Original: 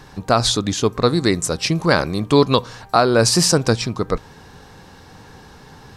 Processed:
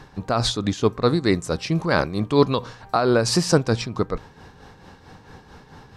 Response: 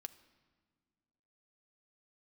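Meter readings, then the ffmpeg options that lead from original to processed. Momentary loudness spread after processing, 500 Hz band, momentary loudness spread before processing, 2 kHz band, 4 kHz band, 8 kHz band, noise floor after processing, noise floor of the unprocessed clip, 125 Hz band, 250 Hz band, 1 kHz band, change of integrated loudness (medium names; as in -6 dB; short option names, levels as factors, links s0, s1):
7 LU, -3.0 dB, 7 LU, -4.5 dB, -6.5 dB, -9.5 dB, -50 dBFS, -44 dBFS, -3.0 dB, -2.5 dB, -5.0 dB, -4.0 dB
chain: -af "highshelf=f=5700:g=-10,tremolo=f=4.5:d=0.57"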